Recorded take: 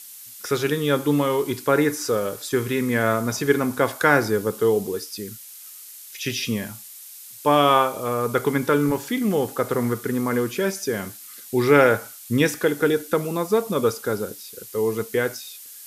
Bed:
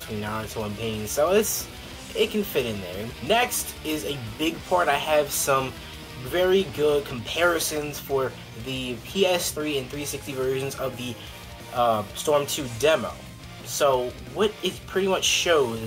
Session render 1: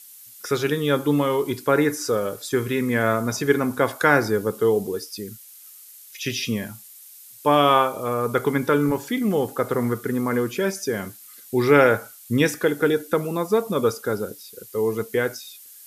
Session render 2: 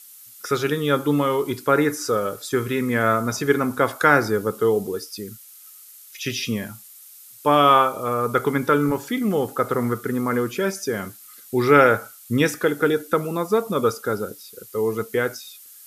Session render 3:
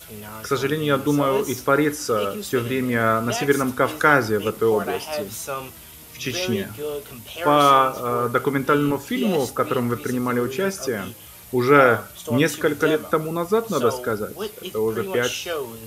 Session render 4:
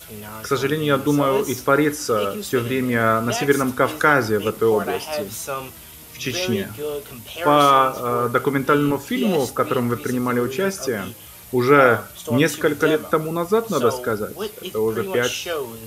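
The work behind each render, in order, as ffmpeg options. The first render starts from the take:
ffmpeg -i in.wav -af "afftdn=noise_reduction=6:noise_floor=-42" out.wav
ffmpeg -i in.wav -af "equalizer=frequency=1300:width=7.6:gain=7.5" out.wav
ffmpeg -i in.wav -i bed.wav -filter_complex "[1:a]volume=-7.5dB[link_01];[0:a][link_01]amix=inputs=2:normalize=0" out.wav
ffmpeg -i in.wav -af "volume=1.5dB,alimiter=limit=-3dB:level=0:latency=1" out.wav

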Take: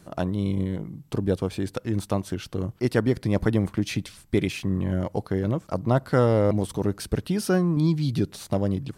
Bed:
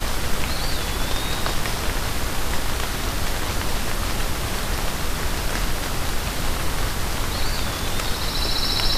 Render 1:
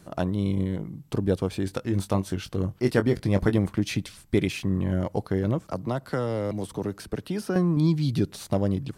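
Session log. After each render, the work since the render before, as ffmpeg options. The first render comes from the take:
ffmpeg -i in.wav -filter_complex "[0:a]asettb=1/sr,asplit=3[link_01][link_02][link_03];[link_01]atrim=end=1.644[link_04];[link_02]atrim=start=1.64:end=3.58,asetpts=PTS-STARTPTS,afade=type=in:duration=0.004:curve=qsin,afade=type=out:start_time=1.936:duration=0.004:curve=qsin,asplit=2[link_05][link_06];[link_06]adelay=21,volume=-9.5dB[link_07];[link_05][link_07]amix=inputs=2:normalize=0,atrim=end_sample=85554[link_08];[link_03]atrim=start=3.576[link_09];[link_04][link_08]acrossfade=duration=0.004:curve1=hsin:curve2=qsin[link_10];[link_10][link_09]acrossfade=duration=0.004:curve1=qsin:curve2=hsin,asettb=1/sr,asplit=3[link_11][link_12][link_13];[link_11]atrim=end=5.594[link_14];[link_12]atrim=start=5.59:end=7.56,asetpts=PTS-STARTPTS,afade=type=in:duration=0.004:curve=qsin,afade=type=out:start_time=1.966:duration=0.004:curve=qsin,acrossover=split=120|250|2100[link_15][link_16][link_17][link_18];[link_15]acompressor=threshold=-43dB:ratio=3[link_19];[link_16]acompressor=threshold=-36dB:ratio=3[link_20];[link_17]acompressor=threshold=-29dB:ratio=3[link_21];[link_18]acompressor=threshold=-45dB:ratio=3[link_22];[link_19][link_20][link_21][link_22]amix=inputs=4:normalize=0[link_23];[link_13]atrim=start=7.556[link_24];[link_14][link_23]acrossfade=duration=0.004:curve1=hsin:curve2=qsin[link_25];[link_25][link_24]acrossfade=duration=0.004:curve1=qsin:curve2=hsin" out.wav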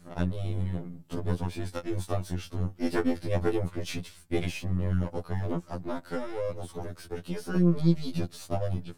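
ffmpeg -i in.wav -af "aeval=exprs='if(lt(val(0),0),0.447*val(0),val(0))':channel_layout=same,afftfilt=real='re*2*eq(mod(b,4),0)':imag='im*2*eq(mod(b,4),0)':win_size=2048:overlap=0.75" out.wav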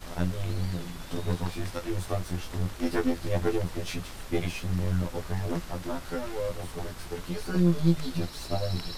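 ffmpeg -i in.wav -i bed.wav -filter_complex "[1:a]volume=-18dB[link_01];[0:a][link_01]amix=inputs=2:normalize=0" out.wav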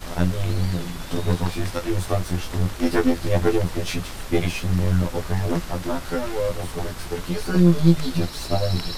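ffmpeg -i in.wav -af "volume=7.5dB" out.wav

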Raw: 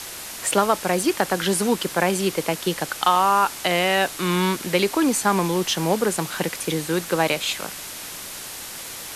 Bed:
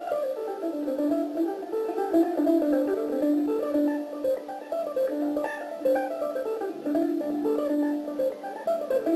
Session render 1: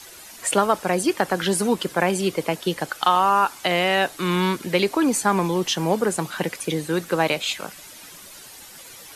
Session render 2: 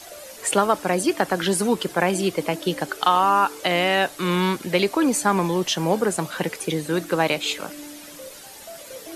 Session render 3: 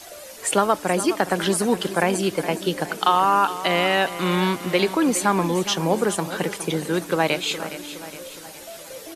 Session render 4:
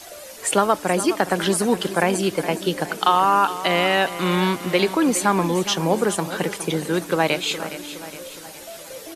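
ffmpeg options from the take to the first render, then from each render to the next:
ffmpeg -i in.wav -af "afftdn=noise_reduction=11:noise_floor=-35" out.wav
ffmpeg -i in.wav -i bed.wav -filter_complex "[1:a]volume=-14.5dB[link_01];[0:a][link_01]amix=inputs=2:normalize=0" out.wav
ffmpeg -i in.wav -af "aecho=1:1:415|830|1245|1660|2075:0.224|0.116|0.0605|0.0315|0.0164" out.wav
ffmpeg -i in.wav -af "volume=1dB" out.wav

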